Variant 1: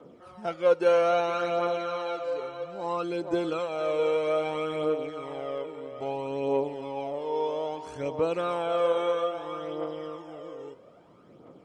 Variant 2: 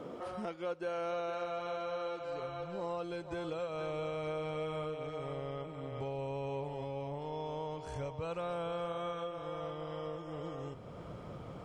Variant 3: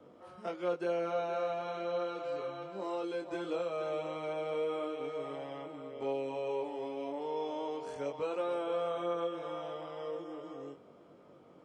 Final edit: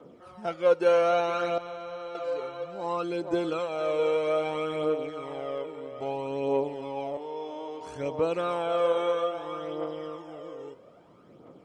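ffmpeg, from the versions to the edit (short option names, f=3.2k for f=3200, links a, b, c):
-filter_complex "[0:a]asplit=3[a][b][c];[a]atrim=end=1.582[d];[1:a]atrim=start=1.578:end=2.152[e];[b]atrim=start=2.148:end=7.172[f];[2:a]atrim=start=7.168:end=7.812[g];[c]atrim=start=7.808[h];[d][e]acrossfade=d=0.004:c1=hsin:c2=hsin[i];[i][f]acrossfade=d=0.004:c1=hsin:c2=hsin[j];[j][g]acrossfade=d=0.004:c1=hsin:c2=hsin[k];[k][h]acrossfade=d=0.004:c1=hsin:c2=hsin"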